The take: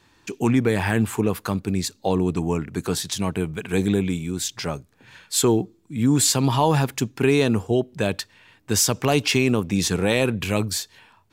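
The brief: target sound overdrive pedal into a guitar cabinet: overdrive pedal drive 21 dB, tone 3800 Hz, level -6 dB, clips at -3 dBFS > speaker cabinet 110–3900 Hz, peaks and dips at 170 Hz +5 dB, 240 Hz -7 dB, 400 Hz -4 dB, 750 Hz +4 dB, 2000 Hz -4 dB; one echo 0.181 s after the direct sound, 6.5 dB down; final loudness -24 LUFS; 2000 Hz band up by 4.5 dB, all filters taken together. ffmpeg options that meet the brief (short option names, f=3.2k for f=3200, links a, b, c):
-filter_complex "[0:a]equalizer=f=2k:t=o:g=8,aecho=1:1:181:0.473,asplit=2[a][b];[b]highpass=f=720:p=1,volume=21dB,asoftclip=type=tanh:threshold=-3dB[c];[a][c]amix=inputs=2:normalize=0,lowpass=f=3.8k:p=1,volume=-6dB,highpass=110,equalizer=f=170:t=q:w=4:g=5,equalizer=f=240:t=q:w=4:g=-7,equalizer=f=400:t=q:w=4:g=-4,equalizer=f=750:t=q:w=4:g=4,equalizer=f=2k:t=q:w=4:g=-4,lowpass=f=3.9k:w=0.5412,lowpass=f=3.9k:w=1.3066,volume=-8dB"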